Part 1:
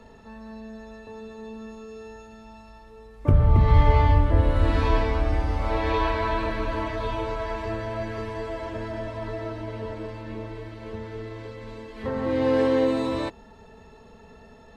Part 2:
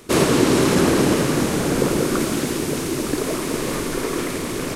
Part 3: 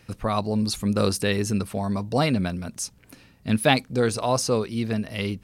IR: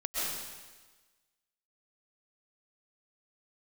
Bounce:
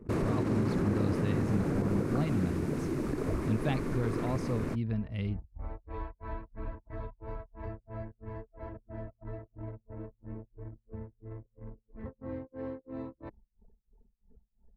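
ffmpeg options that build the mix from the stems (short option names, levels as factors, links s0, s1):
-filter_complex "[0:a]acompressor=threshold=0.0447:ratio=2.5,tremolo=f=3:d=0.97,volume=0.398[s0];[1:a]volume=0.531[s1];[2:a]lowshelf=f=120:g=9,volume=0.376,asplit=2[s2][s3];[s3]apad=whole_len=650970[s4];[s0][s4]sidechaincompress=threshold=0.02:ratio=6:attack=11:release=1250[s5];[s5][s1]amix=inputs=2:normalize=0,equalizer=f=3200:t=o:w=0.71:g=-8.5,alimiter=limit=0.141:level=0:latency=1:release=72,volume=1[s6];[s2][s6]amix=inputs=2:normalize=0,anlmdn=0.0158,bass=f=250:g=8,treble=f=4000:g=-14,acompressor=threshold=0.01:ratio=1.5"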